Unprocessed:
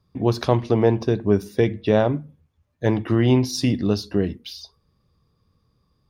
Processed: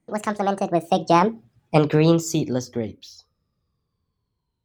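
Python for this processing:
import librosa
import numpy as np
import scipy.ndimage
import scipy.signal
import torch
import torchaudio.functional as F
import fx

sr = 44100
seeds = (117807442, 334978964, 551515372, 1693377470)

y = fx.speed_glide(x, sr, from_pct=177, to_pct=85)
y = fx.doppler_pass(y, sr, speed_mps=11, closest_m=4.5, pass_at_s=1.55)
y = F.gain(torch.from_numpy(y), 5.0).numpy()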